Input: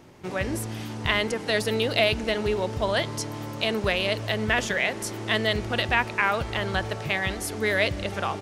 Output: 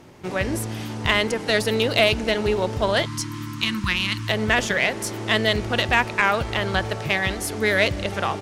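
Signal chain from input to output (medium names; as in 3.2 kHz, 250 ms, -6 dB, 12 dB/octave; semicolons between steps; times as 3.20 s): spectral selection erased 3.06–4.29 s, 360–890 Hz; Chebyshev shaper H 6 -26 dB, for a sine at -6.5 dBFS; trim +3.5 dB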